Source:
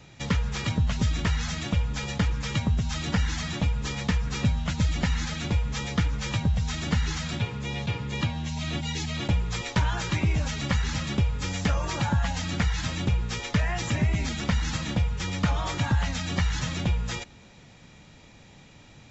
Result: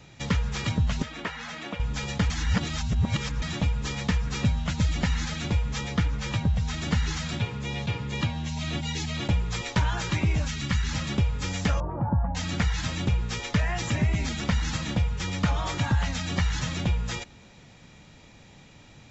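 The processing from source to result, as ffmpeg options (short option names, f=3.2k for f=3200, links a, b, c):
-filter_complex "[0:a]asettb=1/sr,asplit=3[a][b][c];[a]atrim=end=1.024[d];[b]atrim=start=1.02:end=1.8,asetpts=PTS-STARTPTS,afade=t=in:d=0.004:c=qsin,afade=t=out:st=0.776:d=0.004:c=qsin,acrossover=split=240 3200:gain=0.0631 1 0.251[e][f][g];[e][f][g]amix=inputs=3:normalize=0[h];[c]atrim=start=1.796[i];[d][h]acrossfade=d=0.004:c1=hsin:c2=qsin[j];[j][i]acrossfade=d=0.004:c1=qsin:c2=hsin,asettb=1/sr,asplit=3[k][l][m];[k]atrim=end=5.814[n];[l]atrim=start=5.81:end=6.82,asetpts=PTS-STARTPTS,afade=t=in:d=0.004:c=qsin,afade=t=out:st=1.006:d=0.004:c=qsin,highshelf=f=4.6k:g=-4.5[o];[m]atrim=start=6.816[p];[n][o]acrossfade=d=0.004:c1=hsin:c2=qsin[q];[q][p]acrossfade=d=0.004:c1=qsin:c2=hsin,asettb=1/sr,asplit=3[r][s][t];[r]atrim=end=10.454[u];[s]atrim=start=10.45:end=10.91,asetpts=PTS-STARTPTS,afade=t=in:d=0.004:c=qsin,afade=t=out:st=0.456:d=0.004:c=qsin,equalizer=f=620:w=1.2:g=-10.5[v];[t]atrim=start=10.906[w];[u][v]acrossfade=d=0.004:c1=hsin:c2=qsin[x];[x][w]acrossfade=d=0.004:c1=qsin:c2=hsin,asettb=1/sr,asplit=3[y][z][aa];[y]atrim=end=11.804[ab];[z]atrim=start=11.8:end=12.35,asetpts=PTS-STARTPTS,afade=t=in:d=0.004:c=qsin,afade=t=out:st=0.546:d=0.004:c=qsin,lowpass=f=1k:w=0.5412,lowpass=f=1k:w=1.3066[ac];[aa]atrim=start=12.346[ad];[ab][ac]acrossfade=d=0.004:c1=hsin:c2=qsin[ae];[ae][ad]acrossfade=d=0.004:c1=qsin:c2=hsin,asplit=3[af][ag][ah];[af]atrim=end=2.302[ai];[ag]atrim=start=2.298:end=3.422,asetpts=PTS-STARTPTS,areverse[aj];[ah]atrim=start=3.418[ak];[ai][aj]acrossfade=d=0.004:c1=hsin:c2=hsin[al];[al][ak]acrossfade=d=0.004:c1=hsin:c2=hsin"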